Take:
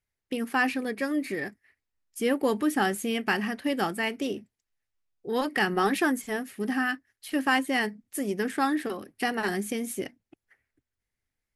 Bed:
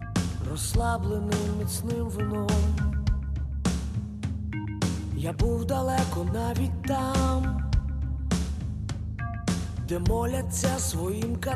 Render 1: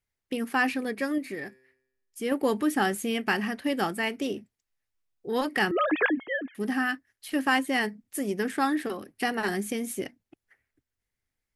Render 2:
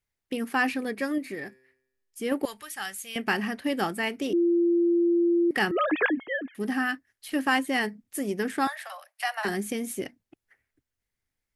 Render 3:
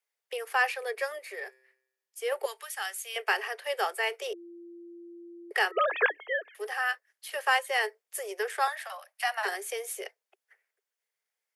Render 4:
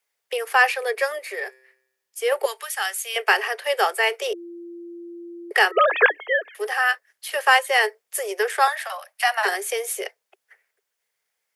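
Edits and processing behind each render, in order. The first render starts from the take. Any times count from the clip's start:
1.18–2.32 resonator 130 Hz, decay 0.89 s, mix 40%; 5.71–6.55 sine-wave speech
2.45–3.16 passive tone stack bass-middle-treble 10-0-10; 4.33–5.51 bleep 343 Hz -19 dBFS; 8.67–9.45 steep high-pass 580 Hz 96 dB/oct
steep high-pass 410 Hz 96 dB/oct; notch 4000 Hz, Q 26
gain +9 dB

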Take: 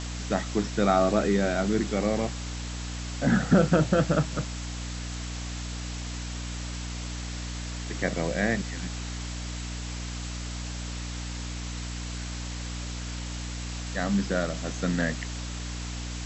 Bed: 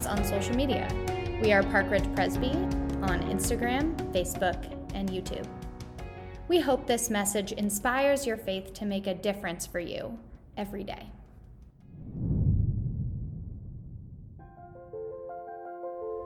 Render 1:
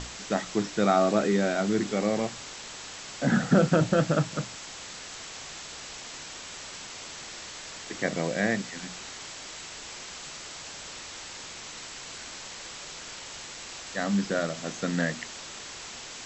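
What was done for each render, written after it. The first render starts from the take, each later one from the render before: notches 60/120/180/240/300 Hz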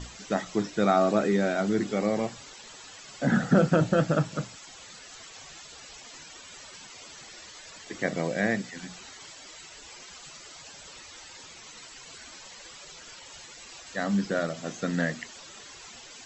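denoiser 13 dB, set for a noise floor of -42 dBFS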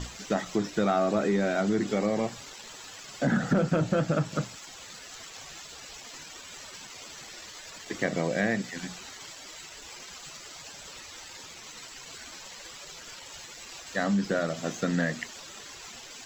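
sample leveller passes 1; compressor 2.5:1, threshold -24 dBFS, peak gain reduction 7 dB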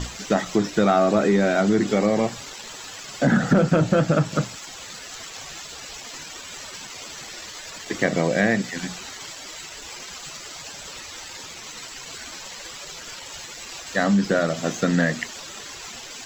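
gain +7 dB

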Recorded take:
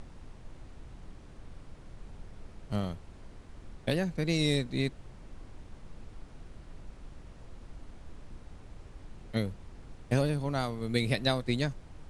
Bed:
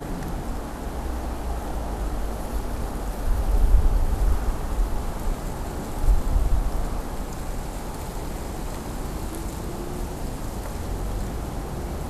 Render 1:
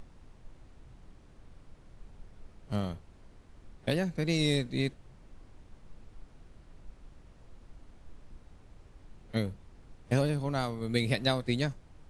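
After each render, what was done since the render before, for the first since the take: noise print and reduce 6 dB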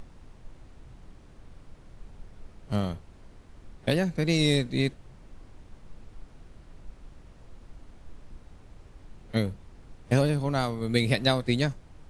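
gain +4.5 dB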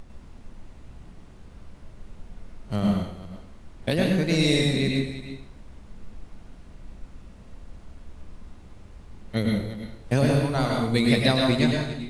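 reverse delay 0.217 s, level -12.5 dB; plate-style reverb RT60 0.63 s, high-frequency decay 0.95×, pre-delay 90 ms, DRR -0.5 dB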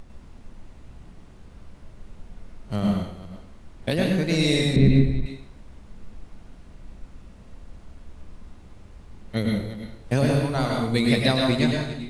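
4.76–5.26 RIAA curve playback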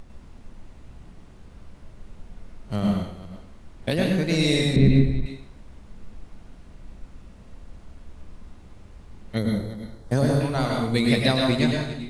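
9.38–10.41 bell 2600 Hz -14 dB 0.48 oct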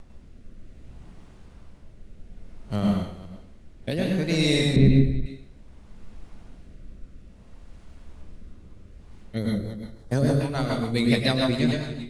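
rotary speaker horn 0.6 Hz, later 7 Hz, at 8.92

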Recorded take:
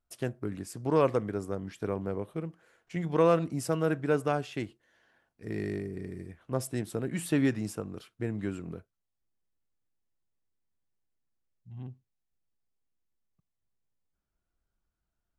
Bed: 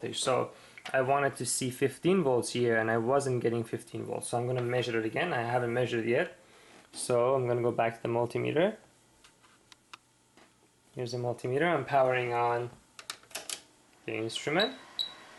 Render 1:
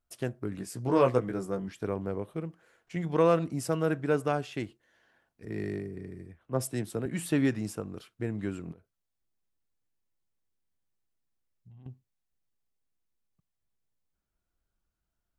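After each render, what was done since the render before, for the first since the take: 0.57–1.68 doubler 16 ms -3.5 dB; 5.45–7.06 three-band expander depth 40%; 8.72–11.86 compressor 12:1, threshold -49 dBFS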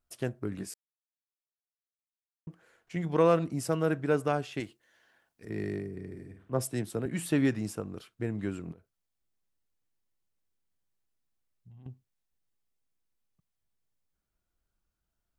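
0.74–2.47 mute; 4.6–5.5 tilt +1.5 dB/oct; 6.06–6.59 flutter echo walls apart 8.8 m, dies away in 0.5 s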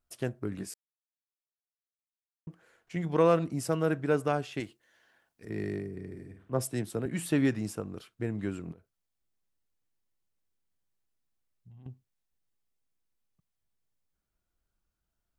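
nothing audible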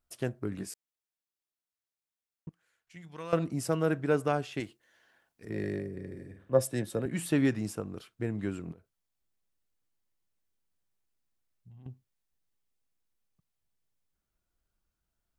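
2.49–3.33 passive tone stack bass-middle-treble 5-5-5; 5.53–7.02 small resonant body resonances 540/1700/3700 Hz, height 13 dB, ringing for 90 ms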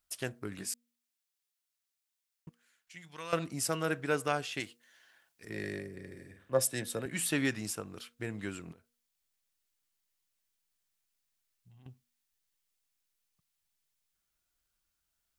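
tilt shelf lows -7 dB, about 1100 Hz; de-hum 238.1 Hz, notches 2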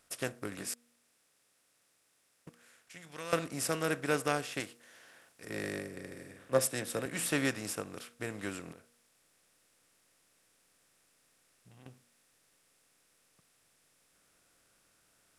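per-bin compression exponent 0.6; upward expander 1.5:1, over -41 dBFS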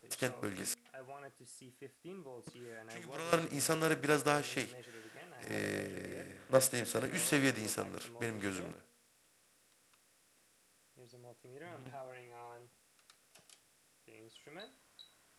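add bed -23.5 dB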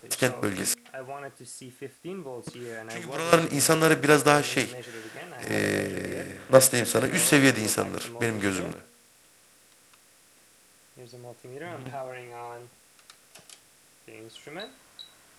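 gain +12 dB

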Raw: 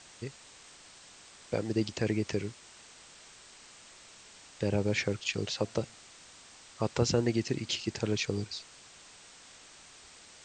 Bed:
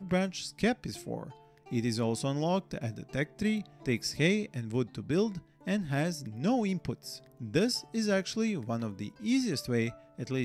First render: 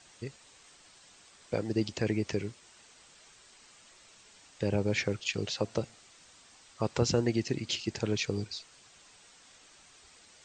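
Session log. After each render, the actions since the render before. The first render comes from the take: denoiser 6 dB, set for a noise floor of -54 dBFS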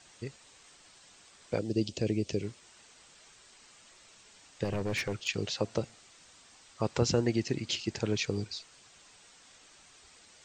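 1.59–2.43 band shelf 1300 Hz -11.5 dB; 4.64–5.28 hard clip -27.5 dBFS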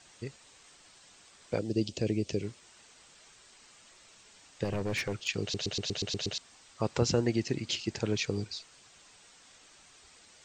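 5.42 stutter in place 0.12 s, 8 plays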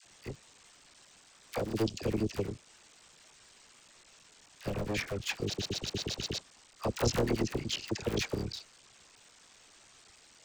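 cycle switcher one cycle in 3, muted; dispersion lows, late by 47 ms, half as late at 960 Hz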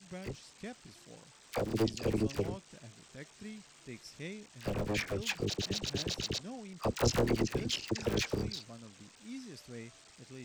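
add bed -17 dB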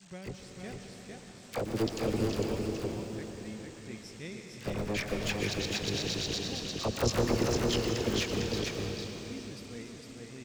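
echo 0.453 s -3.5 dB; plate-style reverb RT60 4.3 s, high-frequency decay 0.9×, pre-delay 0.105 s, DRR 4 dB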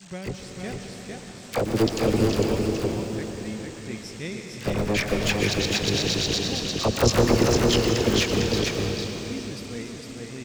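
gain +9 dB

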